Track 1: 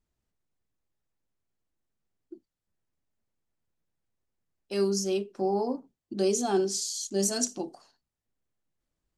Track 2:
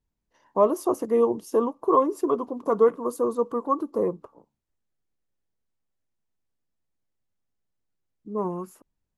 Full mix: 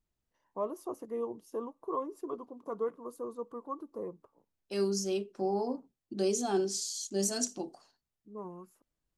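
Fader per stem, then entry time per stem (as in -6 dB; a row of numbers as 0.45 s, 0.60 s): -4.0 dB, -15.0 dB; 0.00 s, 0.00 s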